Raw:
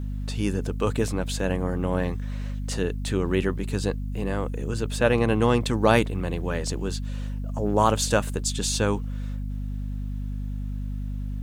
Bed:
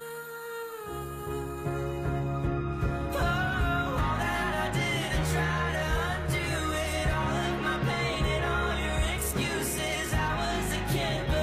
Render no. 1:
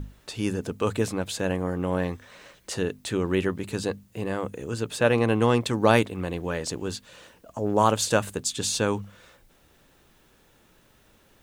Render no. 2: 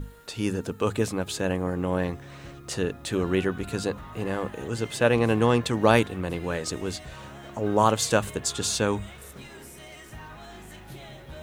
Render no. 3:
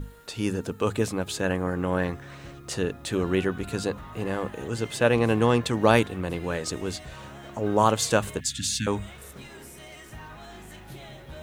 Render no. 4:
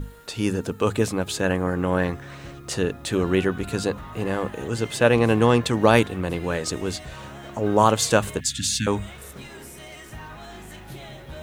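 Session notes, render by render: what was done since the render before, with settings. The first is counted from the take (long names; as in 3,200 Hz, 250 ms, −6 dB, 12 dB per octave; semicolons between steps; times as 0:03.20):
mains-hum notches 50/100/150/200/250 Hz
mix in bed −14.5 dB
0:01.43–0:02.35: parametric band 1,500 Hz +5.5 dB; 0:08.40–0:08.87: Chebyshev band-stop filter 270–1,700 Hz, order 4
level +3.5 dB; brickwall limiter −3 dBFS, peak gain reduction 2 dB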